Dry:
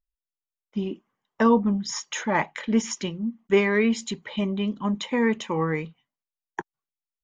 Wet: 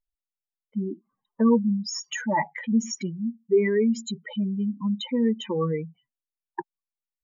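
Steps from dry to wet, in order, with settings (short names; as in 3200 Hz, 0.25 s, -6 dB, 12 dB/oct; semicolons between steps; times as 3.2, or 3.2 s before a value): spectral contrast raised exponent 2.8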